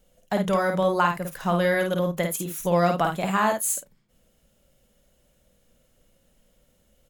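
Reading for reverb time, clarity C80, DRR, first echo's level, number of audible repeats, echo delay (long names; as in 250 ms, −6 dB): no reverb audible, no reverb audible, no reverb audible, −4.5 dB, 2, 52 ms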